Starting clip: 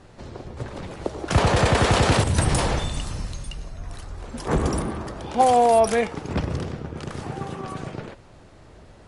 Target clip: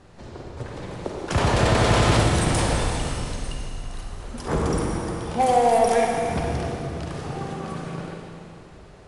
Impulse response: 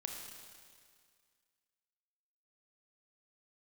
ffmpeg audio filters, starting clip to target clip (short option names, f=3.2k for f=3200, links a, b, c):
-filter_complex "[0:a]aeval=exprs='0.562*sin(PI/2*1.41*val(0)/0.562)':c=same[a];[1:a]atrim=start_sample=2205,asetrate=30870,aresample=44100[b];[a][b]afir=irnorm=-1:irlink=0,volume=-7.5dB"